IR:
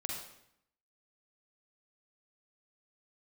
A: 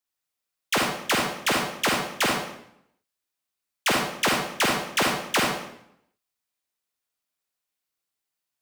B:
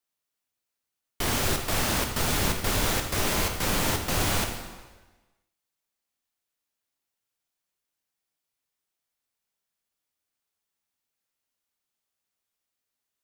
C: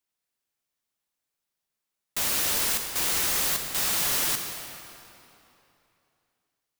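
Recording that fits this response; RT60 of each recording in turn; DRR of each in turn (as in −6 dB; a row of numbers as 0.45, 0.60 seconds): A; 0.75, 1.3, 3.0 seconds; −1.0, 3.5, 4.5 decibels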